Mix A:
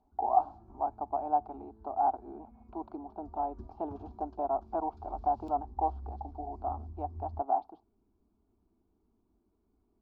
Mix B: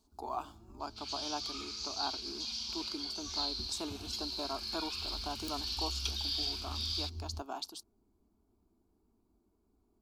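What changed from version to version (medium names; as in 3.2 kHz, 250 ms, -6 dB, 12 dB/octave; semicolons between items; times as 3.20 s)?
speech: remove resonant low-pass 770 Hz, resonance Q 7.8; second sound: unmuted; master: remove distance through air 230 m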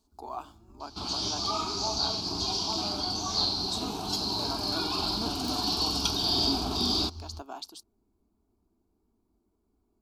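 second sound: remove ladder high-pass 1.7 kHz, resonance 50%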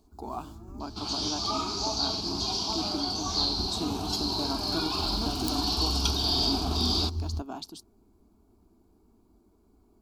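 speech: remove high-pass 480 Hz; first sound +11.0 dB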